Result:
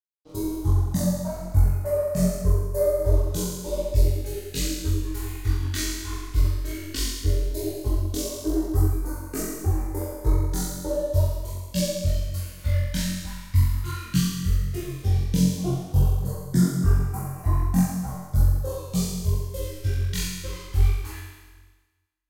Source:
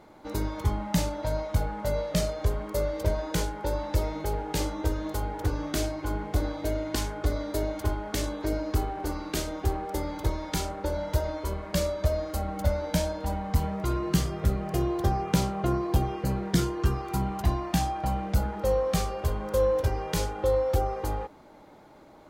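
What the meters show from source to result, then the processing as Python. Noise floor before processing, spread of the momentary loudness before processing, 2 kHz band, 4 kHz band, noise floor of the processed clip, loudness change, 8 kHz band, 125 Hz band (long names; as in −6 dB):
−52 dBFS, 6 LU, −1.5 dB, +2.5 dB, −49 dBFS, +3.5 dB, +5.0 dB, +6.0 dB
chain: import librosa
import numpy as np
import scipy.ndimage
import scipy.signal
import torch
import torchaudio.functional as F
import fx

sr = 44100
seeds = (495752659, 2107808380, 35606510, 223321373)

p1 = fx.bin_expand(x, sr, power=1.5)
p2 = fx.dereverb_blind(p1, sr, rt60_s=1.7)
p3 = fx.rider(p2, sr, range_db=4, speed_s=0.5)
p4 = p2 + F.gain(torch.from_numpy(p3), 1.0).numpy()
p5 = fx.small_body(p4, sr, hz=(1100.0, 1900.0), ring_ms=45, db=6)
p6 = np.sign(p5) * np.maximum(np.abs(p5) - 10.0 ** (-36.0 / 20.0), 0.0)
p7 = fx.vibrato(p6, sr, rate_hz=0.91, depth_cents=9.5)
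p8 = fx.phaser_stages(p7, sr, stages=2, low_hz=580.0, high_hz=3200.0, hz=0.13, feedback_pct=25)
p9 = p8 + fx.room_flutter(p8, sr, wall_m=3.8, rt60_s=1.3, dry=0)
y = fx.detune_double(p9, sr, cents=44)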